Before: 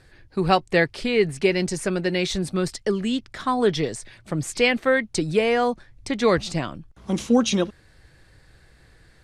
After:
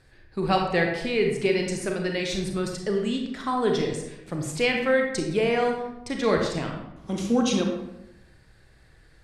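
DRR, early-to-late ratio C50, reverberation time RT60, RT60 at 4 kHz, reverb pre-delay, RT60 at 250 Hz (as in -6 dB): 1.5 dB, 3.5 dB, 0.90 s, 0.55 s, 30 ms, 1.1 s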